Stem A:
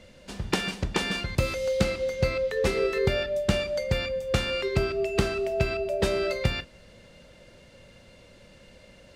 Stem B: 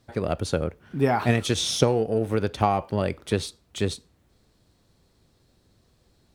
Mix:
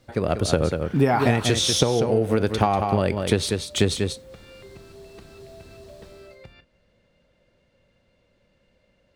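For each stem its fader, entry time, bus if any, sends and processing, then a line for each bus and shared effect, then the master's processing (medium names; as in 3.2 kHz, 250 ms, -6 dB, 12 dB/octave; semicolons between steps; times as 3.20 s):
-12.0 dB, 0.00 s, no send, no echo send, compression 10:1, threshold -30 dBFS, peak gain reduction 13.5 dB; treble shelf 5.3 kHz -11 dB
+2.5 dB, 0.00 s, no send, echo send -8.5 dB, level rider gain up to 10.5 dB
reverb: none
echo: delay 191 ms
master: compression 6:1, threshold -15 dBFS, peak gain reduction 8.5 dB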